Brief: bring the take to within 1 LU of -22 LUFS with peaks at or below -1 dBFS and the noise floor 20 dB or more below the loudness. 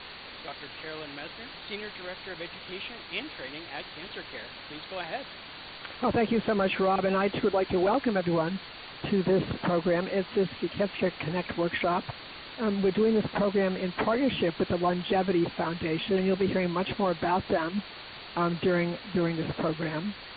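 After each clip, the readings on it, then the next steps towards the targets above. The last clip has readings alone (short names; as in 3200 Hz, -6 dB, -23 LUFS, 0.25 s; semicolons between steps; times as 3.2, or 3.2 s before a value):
noise floor -44 dBFS; noise floor target -49 dBFS; loudness -29.0 LUFS; peak -15.0 dBFS; loudness target -22.0 LUFS
-> noise print and reduce 6 dB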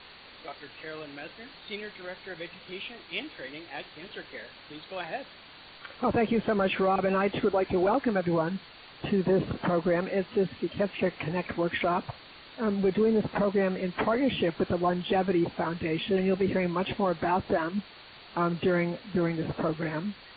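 noise floor -50 dBFS; loudness -28.5 LUFS; peak -15.0 dBFS; loudness target -22.0 LUFS
-> gain +6.5 dB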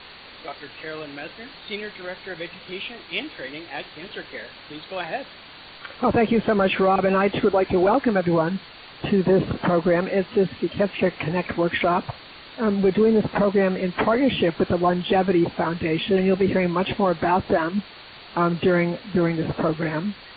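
loudness -22.0 LUFS; peak -8.5 dBFS; noise floor -44 dBFS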